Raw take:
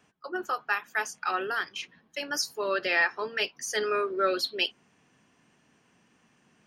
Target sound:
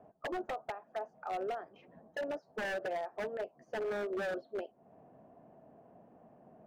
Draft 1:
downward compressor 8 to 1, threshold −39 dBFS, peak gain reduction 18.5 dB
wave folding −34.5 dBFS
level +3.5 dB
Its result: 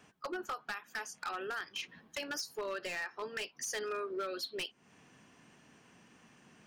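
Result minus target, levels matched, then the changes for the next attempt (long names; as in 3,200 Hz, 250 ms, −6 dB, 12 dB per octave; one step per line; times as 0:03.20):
500 Hz band −4.0 dB
add after downward compressor: low-pass with resonance 660 Hz, resonance Q 5.8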